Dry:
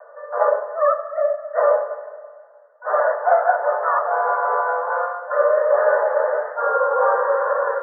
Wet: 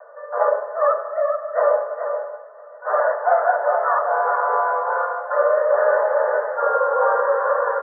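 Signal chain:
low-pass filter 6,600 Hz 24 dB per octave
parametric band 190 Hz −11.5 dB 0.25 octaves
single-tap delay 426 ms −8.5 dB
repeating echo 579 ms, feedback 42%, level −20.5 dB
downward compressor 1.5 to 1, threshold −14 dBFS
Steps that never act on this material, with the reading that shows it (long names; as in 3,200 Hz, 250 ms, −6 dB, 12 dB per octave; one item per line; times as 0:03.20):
low-pass filter 6,600 Hz: nothing at its input above 1,800 Hz
parametric band 190 Hz: nothing at its input below 400 Hz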